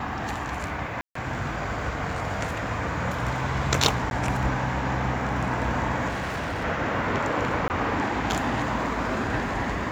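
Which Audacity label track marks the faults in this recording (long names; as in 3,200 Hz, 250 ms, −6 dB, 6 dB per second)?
1.010000	1.150000	drop-out 144 ms
4.100000	4.110000	drop-out 11 ms
6.080000	6.650000	clipping −26.5 dBFS
7.680000	7.700000	drop-out 19 ms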